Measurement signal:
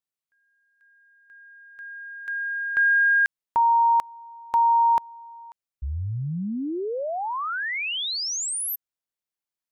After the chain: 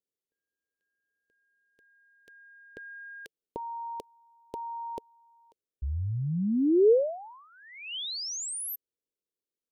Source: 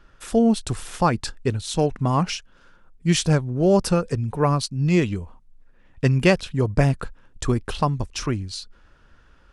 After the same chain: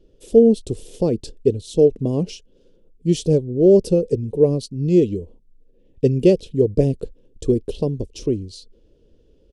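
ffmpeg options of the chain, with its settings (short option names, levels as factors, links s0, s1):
-af "firequalizer=gain_entry='entry(130,0);entry(450,13);entry(740,-11);entry(1300,-28);entry(3000,-5)':delay=0.05:min_phase=1,volume=0.794"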